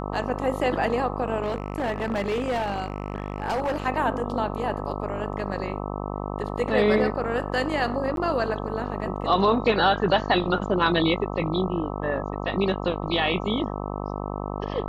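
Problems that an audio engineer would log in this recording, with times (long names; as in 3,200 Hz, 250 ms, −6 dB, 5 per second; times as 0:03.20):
mains buzz 50 Hz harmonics 26 −31 dBFS
0:01.42–0:03.87: clipping −22 dBFS
0:08.16–0:08.17: drop-out 12 ms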